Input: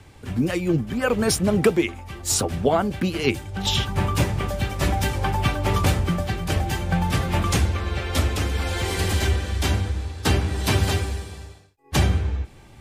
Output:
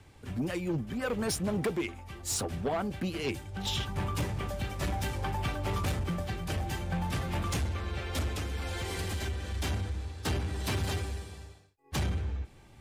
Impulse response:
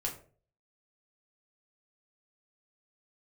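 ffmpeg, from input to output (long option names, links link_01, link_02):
-filter_complex "[0:a]asettb=1/sr,asplit=3[link_01][link_02][link_03];[link_01]atrim=end=8.324[link_04];[link_02]atrim=start=8.32:end=9.54,asetpts=PTS-STARTPTS,afade=type=in:duration=0.004:curve=qsin,afade=type=out:start_time=1.216:duration=0.004:curve=qsin,acompressor=threshold=-21dB:ratio=6[link_05];[link_03]atrim=start=9.536[link_06];[link_04][link_05]acrossfade=duration=0.004:curve1=hsin:curve2=qsin[link_07];[link_07][link_06]acrossfade=duration=0.004:curve1=qsin:curve2=hsin,asoftclip=type=tanh:threshold=-17dB,volume=-8dB"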